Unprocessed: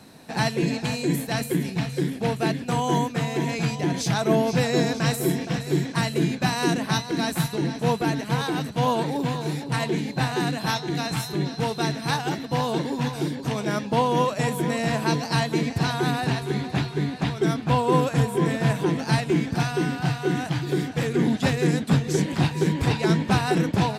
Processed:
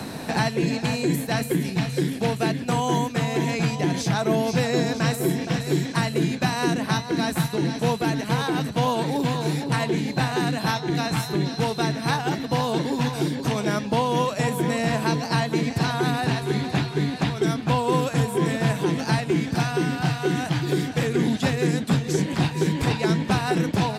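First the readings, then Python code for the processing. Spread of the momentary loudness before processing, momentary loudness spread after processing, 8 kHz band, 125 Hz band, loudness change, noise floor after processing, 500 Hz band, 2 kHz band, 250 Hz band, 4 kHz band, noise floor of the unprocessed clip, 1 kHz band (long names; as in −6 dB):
5 LU, 3 LU, +0.5 dB, +0.5 dB, +0.5 dB, −33 dBFS, +0.5 dB, +1.0 dB, +0.5 dB, +0.5 dB, −36 dBFS, +0.5 dB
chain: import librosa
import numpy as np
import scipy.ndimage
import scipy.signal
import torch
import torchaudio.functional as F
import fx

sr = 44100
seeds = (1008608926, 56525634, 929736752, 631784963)

y = fx.band_squash(x, sr, depth_pct=70)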